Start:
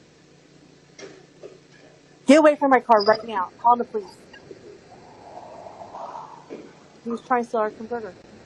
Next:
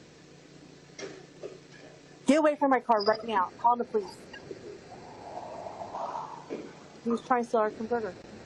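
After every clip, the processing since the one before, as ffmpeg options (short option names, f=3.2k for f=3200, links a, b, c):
-af "acompressor=threshold=-21dB:ratio=4"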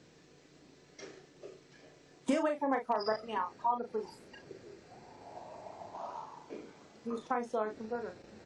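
-filter_complex "[0:a]asplit=2[a][b];[b]adelay=37,volume=-6.5dB[c];[a][c]amix=inputs=2:normalize=0,volume=-8.5dB"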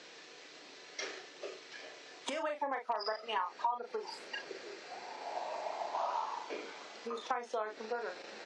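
-af "highshelf=f=2.4k:g=10,acompressor=threshold=-39dB:ratio=10,highpass=530,lowpass=4.1k,volume=9dB"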